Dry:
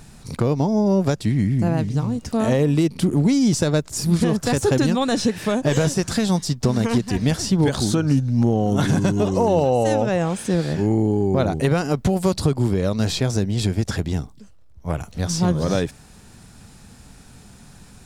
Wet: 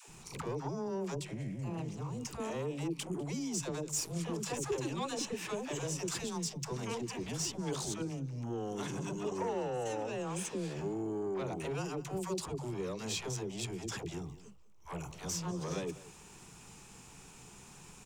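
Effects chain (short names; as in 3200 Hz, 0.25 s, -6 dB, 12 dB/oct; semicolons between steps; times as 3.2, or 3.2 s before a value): compressor, threshold -24 dBFS, peak gain reduction 10.5 dB; ripple EQ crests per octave 0.72, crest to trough 8 dB; on a send: echo 0.198 s -19.5 dB; on the sum: soft clip -22 dBFS, distortion -15 dB; low shelf 180 Hz -10.5 dB; notches 50/100/150 Hz; dispersion lows, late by 86 ms, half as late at 500 Hz; gain -5 dB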